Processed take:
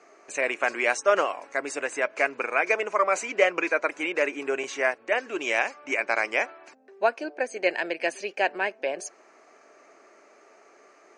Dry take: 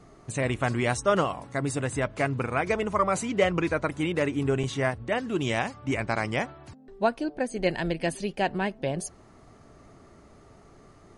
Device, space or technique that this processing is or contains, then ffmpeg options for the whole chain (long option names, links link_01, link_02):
phone speaker on a table: -af "highpass=frequency=360:width=0.5412,highpass=frequency=360:width=1.3066,equalizer=frequency=600:width_type=q:width=4:gain=3,equalizer=frequency=1600:width_type=q:width=4:gain=6,equalizer=frequency=2400:width_type=q:width=4:gain=10,equalizer=frequency=3500:width_type=q:width=4:gain=-7,equalizer=frequency=6200:width_type=q:width=4:gain=5,lowpass=frequency=7900:width=0.5412,lowpass=frequency=7900:width=1.3066"